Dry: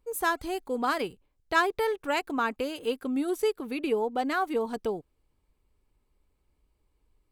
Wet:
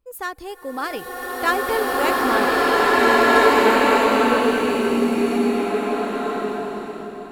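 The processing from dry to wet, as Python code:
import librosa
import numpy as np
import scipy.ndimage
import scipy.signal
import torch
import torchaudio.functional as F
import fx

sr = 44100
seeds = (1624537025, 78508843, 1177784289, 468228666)

y = fx.doppler_pass(x, sr, speed_mps=28, closest_m=27.0, pass_at_s=1.84)
y = fx.buffer_glitch(y, sr, at_s=(3.03,), block=2048, repeats=6)
y = fx.rev_bloom(y, sr, seeds[0], attack_ms=1930, drr_db=-10.5)
y = F.gain(torch.from_numpy(y), 4.0).numpy()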